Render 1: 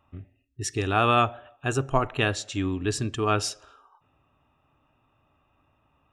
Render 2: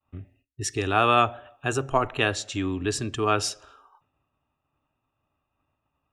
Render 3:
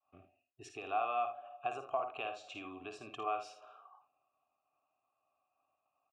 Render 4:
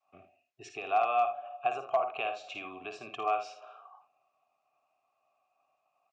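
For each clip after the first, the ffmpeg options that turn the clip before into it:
-filter_complex "[0:a]agate=range=-33dB:threshold=-58dB:ratio=3:detection=peak,acrossover=split=270[a][b];[a]alimiter=level_in=5dB:limit=-24dB:level=0:latency=1,volume=-5dB[c];[c][b]amix=inputs=2:normalize=0,volume=1.5dB"
-filter_complex "[0:a]acompressor=threshold=-30dB:ratio=6,asplit=3[a][b][c];[a]bandpass=f=730:t=q:w=8,volume=0dB[d];[b]bandpass=f=1.09k:t=q:w=8,volume=-6dB[e];[c]bandpass=f=2.44k:t=q:w=8,volume=-9dB[f];[d][e][f]amix=inputs=3:normalize=0,aecho=1:1:54|78:0.398|0.211,volume=5dB"
-af "asoftclip=type=hard:threshold=-25.5dB,highpass=130,equalizer=f=290:t=q:w=4:g=-6,equalizer=f=690:t=q:w=4:g=4,equalizer=f=2.2k:t=q:w=4:g=6,lowpass=f=7.1k:w=0.5412,lowpass=f=7.1k:w=1.3066,volume=4.5dB"

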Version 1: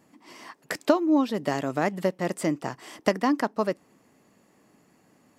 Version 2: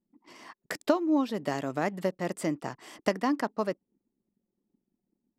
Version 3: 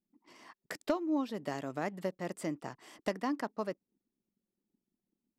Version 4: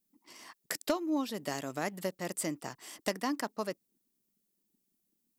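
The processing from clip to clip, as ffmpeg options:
-af "anlmdn=0.00631,volume=-4dB"
-af "asoftclip=type=hard:threshold=-14dB,volume=-6.5dB"
-af "crystalizer=i=3.5:c=0"

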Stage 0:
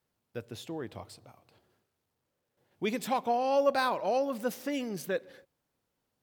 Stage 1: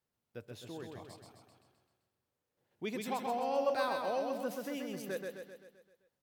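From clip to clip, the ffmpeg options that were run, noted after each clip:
-af "aecho=1:1:130|260|390|520|650|780|910:0.631|0.341|0.184|0.0994|0.0537|0.029|0.0156,volume=-7.5dB"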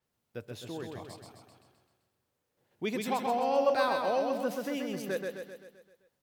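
-af "adynamicequalizer=threshold=0.00141:dfrequency=6500:dqfactor=0.7:tfrequency=6500:tqfactor=0.7:attack=5:release=100:ratio=0.375:range=2:mode=cutabove:tftype=highshelf,volume=5.5dB"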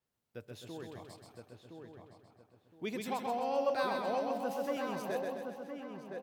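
-filter_complex "[0:a]asplit=2[a][b];[b]adelay=1016,lowpass=f=1.8k:p=1,volume=-5dB,asplit=2[c][d];[d]adelay=1016,lowpass=f=1.8k:p=1,volume=0.28,asplit=2[e][f];[f]adelay=1016,lowpass=f=1.8k:p=1,volume=0.28,asplit=2[g][h];[h]adelay=1016,lowpass=f=1.8k:p=1,volume=0.28[i];[a][c][e][g][i]amix=inputs=5:normalize=0,volume=-5.5dB"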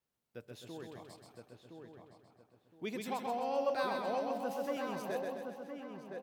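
-af "equalizer=f=97:t=o:w=0.27:g=-9,volume=-1.5dB"

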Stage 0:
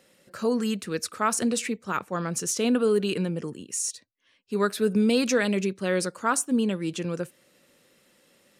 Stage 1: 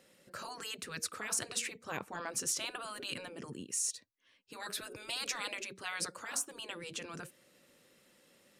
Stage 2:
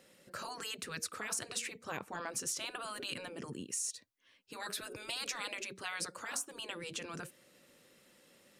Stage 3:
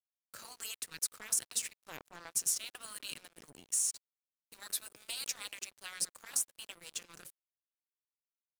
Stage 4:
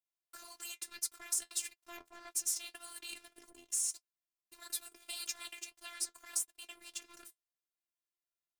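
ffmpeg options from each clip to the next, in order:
-af "afftfilt=real='re*lt(hypot(re,im),0.126)':imag='im*lt(hypot(re,im),0.126)':win_size=1024:overlap=0.75,volume=-4dB"
-af "acompressor=threshold=-39dB:ratio=2,volume=1.5dB"
-af "aemphasis=mode=production:type=75kf,aeval=exprs='sgn(val(0))*max(abs(val(0))-0.00891,0)':c=same,volume=-5dB"
-af "flanger=delay=5.2:depth=6.4:regen=-51:speed=1.7:shape=sinusoidal,afftfilt=real='hypot(re,im)*cos(PI*b)':imag='0':win_size=512:overlap=0.75,volume=5dB"

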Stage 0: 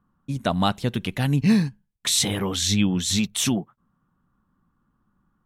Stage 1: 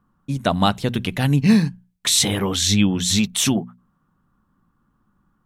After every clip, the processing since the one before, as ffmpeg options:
-af "bandreject=f=60:t=h:w=6,bandreject=f=120:t=h:w=6,bandreject=f=180:t=h:w=6,bandreject=f=240:t=h:w=6,volume=4dB"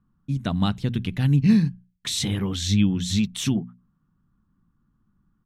-af "firequalizer=gain_entry='entry(130,0);entry(580,-14);entry(1100,-11);entry(1600,-9);entry(3500,-8);entry(9500,-14)':delay=0.05:min_phase=1"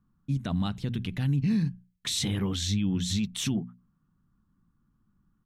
-af "alimiter=limit=-17dB:level=0:latency=1:release=54,volume=-2.5dB"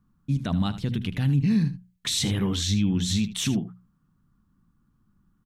-af "aecho=1:1:77:0.2,volume=3.5dB"

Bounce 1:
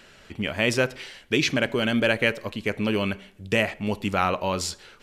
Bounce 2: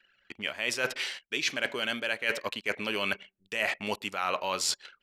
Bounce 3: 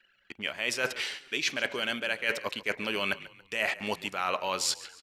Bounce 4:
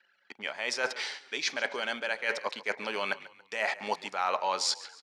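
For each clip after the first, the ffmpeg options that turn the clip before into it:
-af "highpass=f=1.2k:p=1,anlmdn=0.0251,areverse,acompressor=threshold=-33dB:ratio=20,areverse,volume=7.5dB"
-filter_complex "[0:a]asplit=4[a][b][c][d];[b]adelay=140,afreqshift=-37,volume=-18dB[e];[c]adelay=280,afreqshift=-74,volume=-25.5dB[f];[d]adelay=420,afreqshift=-111,volume=-33.1dB[g];[a][e][f][g]amix=inputs=4:normalize=0"
-af "highpass=290,equalizer=f=330:t=q:w=4:g=-5,equalizer=f=850:t=q:w=4:g=7,equalizer=f=2.8k:t=q:w=4:g=-8,equalizer=f=4.9k:t=q:w=4:g=3,equalizer=f=7.8k:t=q:w=4:g=-5,lowpass=f=8.6k:w=0.5412,lowpass=f=8.6k:w=1.3066"

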